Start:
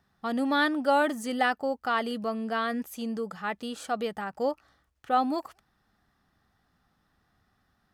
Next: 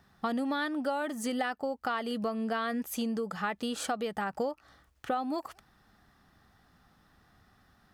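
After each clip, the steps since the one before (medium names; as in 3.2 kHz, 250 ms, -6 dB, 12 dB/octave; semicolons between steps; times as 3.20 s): compression 10:1, threshold -36 dBFS, peak gain reduction 17.5 dB; trim +7 dB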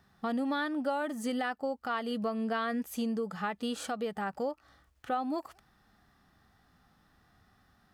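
harmonic-percussive split percussive -6 dB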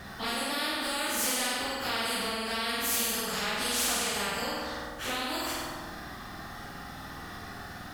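phase randomisation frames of 100 ms; flutter echo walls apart 8.5 m, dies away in 0.87 s; spectrum-flattening compressor 4:1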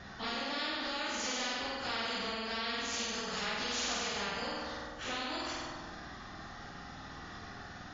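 trim -4.5 dB; MP3 32 kbps 16 kHz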